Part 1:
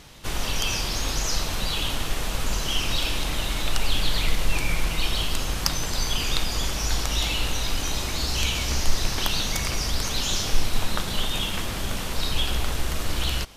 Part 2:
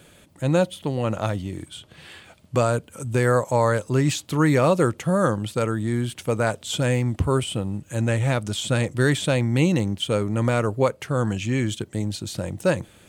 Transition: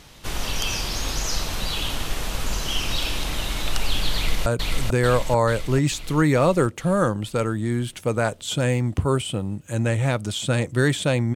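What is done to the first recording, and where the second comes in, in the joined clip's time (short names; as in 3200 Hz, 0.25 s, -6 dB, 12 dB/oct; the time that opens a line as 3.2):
part 1
4.15–4.46 echo throw 0.44 s, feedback 60%, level -1.5 dB
4.46 switch to part 2 from 2.68 s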